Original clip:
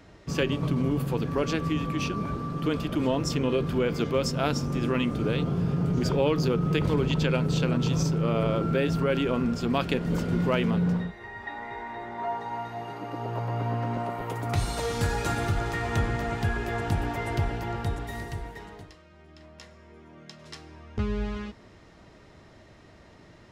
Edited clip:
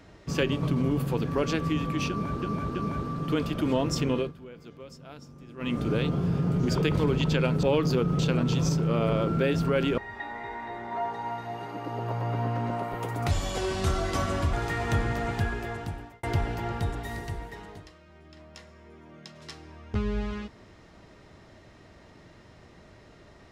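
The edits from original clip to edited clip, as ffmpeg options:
ffmpeg -i in.wav -filter_complex "[0:a]asplit=12[link_01][link_02][link_03][link_04][link_05][link_06][link_07][link_08][link_09][link_10][link_11][link_12];[link_01]atrim=end=2.422[link_13];[link_02]atrim=start=2.088:end=2.422[link_14];[link_03]atrim=start=2.088:end=3.67,asetpts=PTS-STARTPTS,afade=type=out:start_time=1.322:duration=0.26:curve=qsin:silence=0.105925[link_15];[link_04]atrim=start=3.67:end=4.91,asetpts=PTS-STARTPTS,volume=-19.5dB[link_16];[link_05]atrim=start=4.91:end=6.162,asetpts=PTS-STARTPTS,afade=type=in:duration=0.26:curve=qsin:silence=0.105925[link_17];[link_06]atrim=start=6.718:end=7.532[link_18];[link_07]atrim=start=6.158:end=6.722[link_19];[link_08]atrim=start=7.528:end=9.322[link_20];[link_09]atrim=start=11.248:end=14.584[link_21];[link_10]atrim=start=14.58:end=15.57,asetpts=PTS-STARTPTS,asetrate=35721,aresample=44100[link_22];[link_11]atrim=start=15.566:end=17.27,asetpts=PTS-STARTPTS,afade=type=out:start_time=0.814:duration=0.89[link_23];[link_12]atrim=start=17.27,asetpts=PTS-STARTPTS,afade=type=in:duration=0.004:curve=hsin[link_24];[link_13][link_14]acrossfade=duration=0.004:curve1=hsin:curve2=hsin[link_25];[link_15][link_16][link_17]concat=n=3:v=0:a=1[link_26];[link_25][link_26]acrossfade=duration=0.004:curve1=hsin:curve2=hsin[link_27];[link_27][link_18]acrossfade=duration=0.004:curve1=hsin:curve2=hsin[link_28];[link_28][link_19]acrossfade=duration=0.004:curve1=hsin:curve2=hsin[link_29];[link_29][link_20]acrossfade=duration=0.004:curve1=hsin:curve2=hsin[link_30];[link_30][link_21]acrossfade=duration=0.004:curve1=hsin:curve2=hsin[link_31];[link_31][link_22]acrossfade=duration=0.004:curve1=hsin:curve2=hsin[link_32];[link_23][link_24]concat=n=2:v=0:a=1[link_33];[link_32][link_33]acrossfade=duration=0.004:curve1=hsin:curve2=hsin" out.wav

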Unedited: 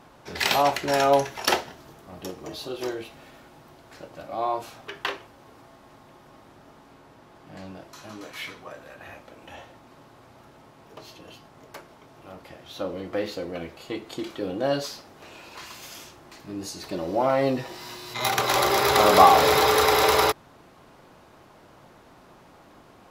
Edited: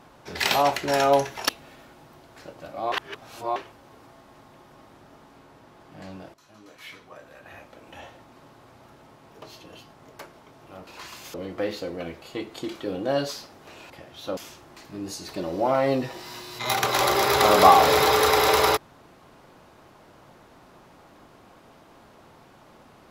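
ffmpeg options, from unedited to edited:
ffmpeg -i in.wav -filter_complex "[0:a]asplit=9[link_01][link_02][link_03][link_04][link_05][link_06][link_07][link_08][link_09];[link_01]atrim=end=1.492[link_10];[link_02]atrim=start=3.038:end=4.472[link_11];[link_03]atrim=start=4.468:end=5.112,asetpts=PTS-STARTPTS,areverse[link_12];[link_04]atrim=start=5.108:end=7.89,asetpts=PTS-STARTPTS,afade=type=out:start_time=2.778:duration=0.004:curve=hsin:silence=0.177828[link_13];[link_05]atrim=start=7.89:end=12.422,asetpts=PTS-STARTPTS,afade=type=in:duration=1.63:silence=0.177828[link_14];[link_06]atrim=start=15.448:end=15.922[link_15];[link_07]atrim=start=12.888:end=15.452[link_16];[link_08]atrim=start=12.418:end=12.892[link_17];[link_09]atrim=start=15.918[link_18];[link_10][link_11]acrossfade=duration=0.004:curve1=hsin:curve2=hsin[link_19];[link_19][link_12]acrossfade=duration=0.004:curve1=hsin:curve2=hsin[link_20];[link_13][link_14]concat=n=2:v=0:a=1[link_21];[link_20][link_21]acrossfade=duration=0.004:curve1=hsin:curve2=hsin[link_22];[link_22][link_15]acrossfade=duration=0.004:curve1=hsin:curve2=hsin[link_23];[link_23][link_16]acrossfade=duration=0.004:curve1=hsin:curve2=hsin[link_24];[link_24][link_17]acrossfade=duration=0.004:curve1=hsin:curve2=hsin[link_25];[link_25][link_18]acrossfade=duration=0.004:curve1=hsin:curve2=hsin" out.wav

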